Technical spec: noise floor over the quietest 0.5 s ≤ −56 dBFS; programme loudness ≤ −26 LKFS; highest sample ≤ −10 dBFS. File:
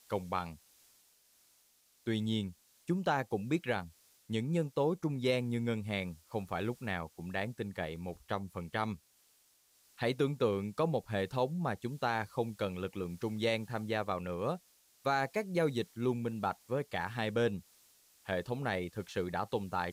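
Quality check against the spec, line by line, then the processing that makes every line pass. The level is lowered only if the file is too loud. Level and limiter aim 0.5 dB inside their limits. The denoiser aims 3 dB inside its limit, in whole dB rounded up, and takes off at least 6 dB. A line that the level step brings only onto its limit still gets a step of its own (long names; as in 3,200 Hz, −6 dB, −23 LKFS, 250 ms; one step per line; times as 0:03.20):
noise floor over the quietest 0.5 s −69 dBFS: in spec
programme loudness −35.5 LKFS: in spec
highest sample −19.0 dBFS: in spec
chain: no processing needed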